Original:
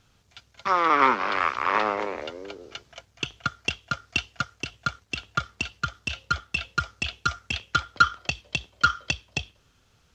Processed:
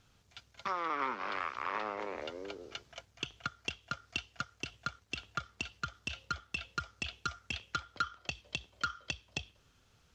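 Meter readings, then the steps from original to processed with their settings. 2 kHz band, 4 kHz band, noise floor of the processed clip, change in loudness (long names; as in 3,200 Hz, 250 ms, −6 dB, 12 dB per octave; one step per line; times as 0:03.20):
−12.5 dB, −10.0 dB, −69 dBFS, −13.0 dB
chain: downward compressor 2.5 to 1, threshold −32 dBFS, peak gain reduction 13.5 dB
level −4.5 dB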